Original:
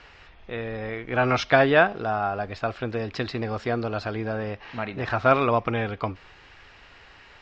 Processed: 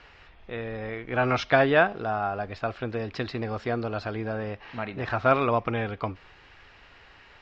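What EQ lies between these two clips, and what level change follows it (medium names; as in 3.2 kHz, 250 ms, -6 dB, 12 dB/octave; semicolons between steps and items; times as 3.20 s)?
distance through air 51 m; -2.0 dB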